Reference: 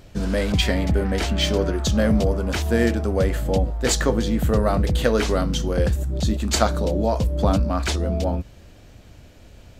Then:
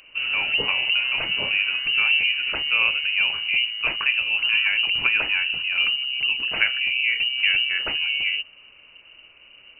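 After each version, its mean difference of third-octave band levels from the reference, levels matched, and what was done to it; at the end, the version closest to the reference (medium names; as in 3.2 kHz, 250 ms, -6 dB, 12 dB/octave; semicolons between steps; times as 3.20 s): 19.5 dB: high-pass 67 Hz; dynamic bell 1.7 kHz, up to -4 dB, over -42 dBFS, Q 4.2; frequency inversion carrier 2.9 kHz; trim -1.5 dB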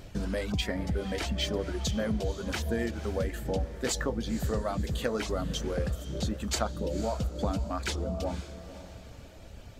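4.5 dB: reverb removal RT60 1.1 s; compression 2:1, threshold -35 dBFS, peak gain reduction 12 dB; echo that smears into a reverb 506 ms, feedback 42%, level -12.5 dB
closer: second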